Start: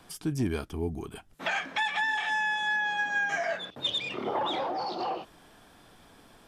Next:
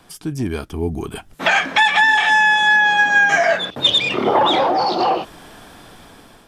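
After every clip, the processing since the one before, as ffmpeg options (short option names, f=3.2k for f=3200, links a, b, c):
-af "dynaudnorm=f=400:g=5:m=10dB,volume=5dB"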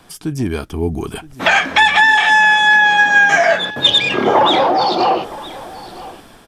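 -af "aecho=1:1:967:0.119,volume=3dB"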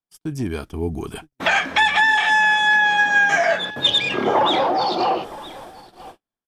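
-af "agate=range=-44dB:threshold=-31dB:ratio=16:detection=peak,volume=-5.5dB"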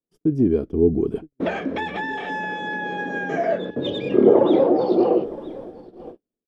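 -af "firequalizer=gain_entry='entry(100,0);entry(230,8);entry(460,10);entry(790,-10);entry(1600,-14);entry(8600,-25)':delay=0.05:min_phase=1"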